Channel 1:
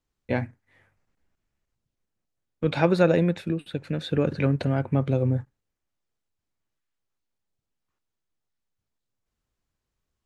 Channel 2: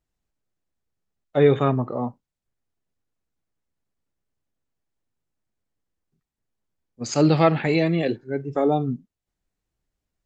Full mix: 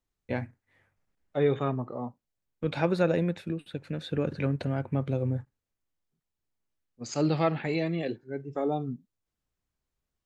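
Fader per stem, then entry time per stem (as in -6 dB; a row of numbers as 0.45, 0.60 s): -5.5, -8.5 dB; 0.00, 0.00 s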